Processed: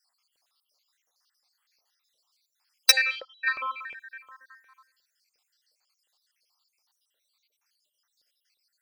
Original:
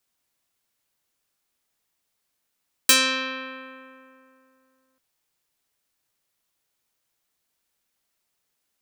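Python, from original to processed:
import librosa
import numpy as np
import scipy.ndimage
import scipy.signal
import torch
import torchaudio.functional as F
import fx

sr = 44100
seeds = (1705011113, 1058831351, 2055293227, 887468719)

p1 = fx.spec_dropout(x, sr, seeds[0], share_pct=67)
p2 = fx.peak_eq(p1, sr, hz=4700.0, db=14.5, octaves=0.52)
p3 = p2 + fx.echo_single(p2, sr, ms=78, db=-20.0, dry=0)
p4 = fx.tube_stage(p3, sr, drive_db=6.0, bias=0.55)
p5 = fx.spec_box(p4, sr, start_s=2.94, length_s=1.88, low_hz=920.0, high_hz=2600.0, gain_db=11)
p6 = fx.filter_lfo_highpass(p5, sr, shape='saw_up', hz=2.8, low_hz=510.0, high_hz=2800.0, q=2.8)
p7 = fx.vowel_filter(p6, sr, vowel='e', at=(2.9, 3.46), fade=0.02)
y = p7 * 10.0 ** (4.5 / 20.0)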